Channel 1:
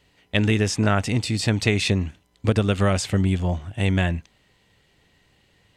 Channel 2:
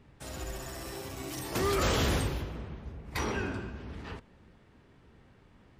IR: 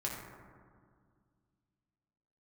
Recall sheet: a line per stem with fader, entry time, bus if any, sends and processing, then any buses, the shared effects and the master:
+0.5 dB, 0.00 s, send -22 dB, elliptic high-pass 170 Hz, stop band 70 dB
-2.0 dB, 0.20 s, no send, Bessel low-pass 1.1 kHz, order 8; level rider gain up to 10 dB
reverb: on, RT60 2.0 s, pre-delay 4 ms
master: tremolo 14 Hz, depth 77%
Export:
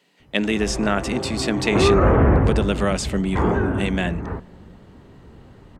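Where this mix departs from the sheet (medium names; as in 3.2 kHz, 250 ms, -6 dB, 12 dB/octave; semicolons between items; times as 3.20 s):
stem 2 -2.0 dB -> +4.0 dB; master: missing tremolo 14 Hz, depth 77%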